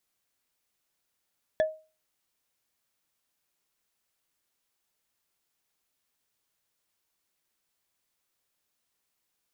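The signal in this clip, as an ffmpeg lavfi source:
-f lavfi -i "aevalsrc='0.126*pow(10,-3*t/0.33)*sin(2*PI*628*t)+0.0447*pow(10,-3*t/0.098)*sin(2*PI*1731.4*t)+0.0158*pow(10,-3*t/0.044)*sin(2*PI*3393.7*t)+0.00562*pow(10,-3*t/0.024)*sin(2*PI*5609.9*t)+0.002*pow(10,-3*t/0.015)*sin(2*PI*8377.5*t)':d=0.45:s=44100"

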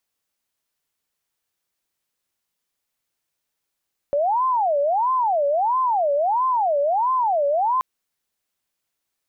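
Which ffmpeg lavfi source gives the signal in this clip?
-f lavfi -i "aevalsrc='0.141*sin(2*PI*(802.5*t-237.5/(2*PI*1.5)*sin(2*PI*1.5*t)))':d=3.68:s=44100"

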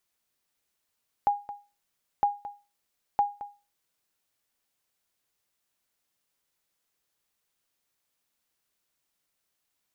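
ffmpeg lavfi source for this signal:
-f lavfi -i "aevalsrc='0.168*(sin(2*PI*817*mod(t,0.96))*exp(-6.91*mod(t,0.96)/0.3)+0.178*sin(2*PI*817*max(mod(t,0.96)-0.22,0))*exp(-6.91*max(mod(t,0.96)-0.22,0)/0.3))':d=2.88:s=44100"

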